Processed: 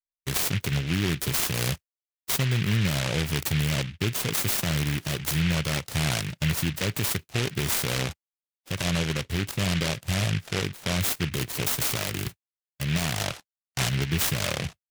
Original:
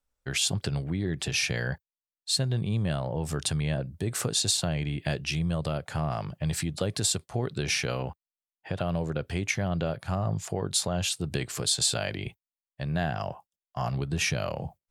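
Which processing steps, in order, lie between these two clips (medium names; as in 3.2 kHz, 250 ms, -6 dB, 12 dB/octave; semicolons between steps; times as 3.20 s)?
peak limiter -19 dBFS, peak gain reduction 7 dB; expander -37 dBFS; 8.78–11.00 s: low-pass 1.6 kHz 12 dB/octave; delay time shaken by noise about 2.3 kHz, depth 0.31 ms; trim +4 dB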